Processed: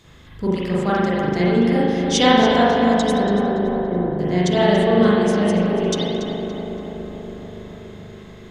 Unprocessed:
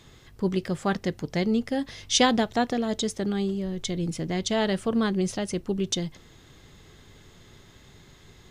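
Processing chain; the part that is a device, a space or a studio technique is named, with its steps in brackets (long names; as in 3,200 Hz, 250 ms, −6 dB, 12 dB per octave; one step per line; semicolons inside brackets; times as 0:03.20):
0:03.23–0:04.19: inverse Chebyshev low-pass filter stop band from 2,900 Hz, stop band 40 dB
dub delay into a spring reverb (feedback echo with a low-pass in the loop 284 ms, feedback 76%, low-pass 2,400 Hz, level −5 dB; spring reverb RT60 1.1 s, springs 39 ms, chirp 60 ms, DRR −7 dB)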